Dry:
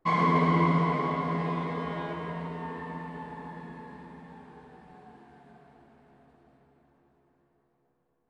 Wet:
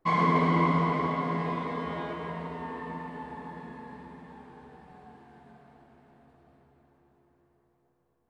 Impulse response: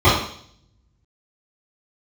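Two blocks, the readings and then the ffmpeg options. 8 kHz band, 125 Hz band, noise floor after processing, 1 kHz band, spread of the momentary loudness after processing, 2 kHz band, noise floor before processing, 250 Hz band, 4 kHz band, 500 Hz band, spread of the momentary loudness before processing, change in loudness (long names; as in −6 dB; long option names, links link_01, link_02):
can't be measured, −1.5 dB, −72 dBFS, 0.0 dB, 22 LU, 0.0 dB, −73 dBFS, −0.5 dB, 0.0 dB, 0.0 dB, 22 LU, −0.5 dB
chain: -filter_complex "[0:a]asplit=2[link_01][link_02];[1:a]atrim=start_sample=2205,adelay=93[link_03];[link_02][link_03]afir=irnorm=-1:irlink=0,volume=-38.5dB[link_04];[link_01][link_04]amix=inputs=2:normalize=0"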